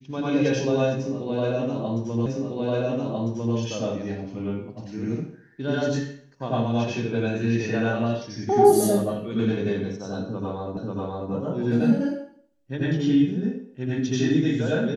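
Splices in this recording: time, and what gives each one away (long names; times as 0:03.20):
0:02.26: the same again, the last 1.3 s
0:10.77: the same again, the last 0.54 s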